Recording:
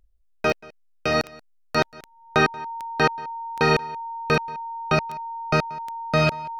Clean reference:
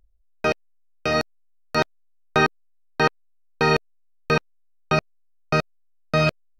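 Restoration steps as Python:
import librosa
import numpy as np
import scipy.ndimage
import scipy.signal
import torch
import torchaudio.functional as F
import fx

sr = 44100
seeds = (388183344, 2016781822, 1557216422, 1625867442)

y = fx.fix_declick_ar(x, sr, threshold=10.0)
y = fx.notch(y, sr, hz=920.0, q=30.0)
y = fx.fix_echo_inverse(y, sr, delay_ms=182, level_db=-23.0)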